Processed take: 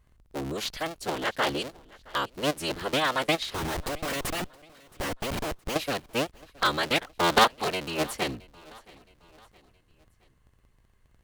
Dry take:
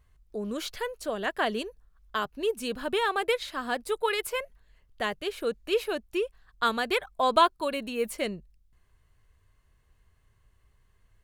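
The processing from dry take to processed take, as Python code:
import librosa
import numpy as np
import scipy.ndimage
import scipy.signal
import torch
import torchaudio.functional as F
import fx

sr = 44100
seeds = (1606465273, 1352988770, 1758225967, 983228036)

y = fx.cycle_switch(x, sr, every=3, mode='inverted')
y = fx.dynamic_eq(y, sr, hz=4200.0, q=0.78, threshold_db=-45.0, ratio=4.0, max_db=5)
y = fx.schmitt(y, sr, flips_db=-35.0, at=(3.54, 5.76))
y = fx.echo_feedback(y, sr, ms=669, feedback_pct=46, wet_db=-23.5)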